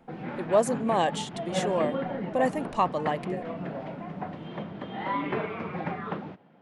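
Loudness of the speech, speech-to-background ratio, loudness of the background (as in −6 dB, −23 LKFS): −28.0 LKFS, 6.0 dB, −34.0 LKFS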